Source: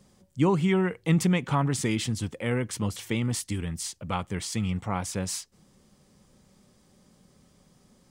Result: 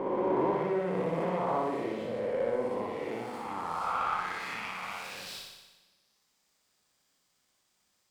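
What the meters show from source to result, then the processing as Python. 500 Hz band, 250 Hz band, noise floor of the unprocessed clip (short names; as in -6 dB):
+1.5 dB, -9.0 dB, -62 dBFS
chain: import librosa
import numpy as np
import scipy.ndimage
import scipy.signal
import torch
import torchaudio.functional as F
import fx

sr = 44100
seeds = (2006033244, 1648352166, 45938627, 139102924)

y = fx.spec_swells(x, sr, rise_s=2.91)
y = fx.graphic_eq_15(y, sr, hz=(100, 1000, 6300), db=(-5, 3, -10))
y = 10.0 ** (-17.5 / 20.0) * np.tanh(y / 10.0 ** (-17.5 / 20.0))
y = fx.filter_sweep_bandpass(y, sr, from_hz=570.0, to_hz=6900.0, start_s=2.76, end_s=6.35, q=2.2)
y = fx.room_flutter(y, sr, wall_m=10.3, rt60_s=1.1)
y = fx.running_max(y, sr, window=3)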